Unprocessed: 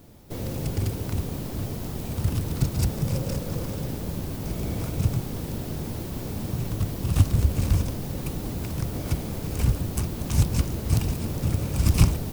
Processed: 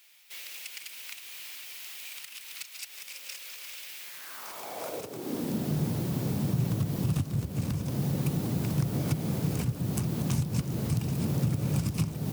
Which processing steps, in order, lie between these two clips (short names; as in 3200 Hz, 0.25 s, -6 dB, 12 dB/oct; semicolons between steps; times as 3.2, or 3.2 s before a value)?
compressor 10:1, threshold -26 dBFS, peak gain reduction 16 dB; high-pass sweep 2400 Hz -> 140 Hz, 3.99–5.78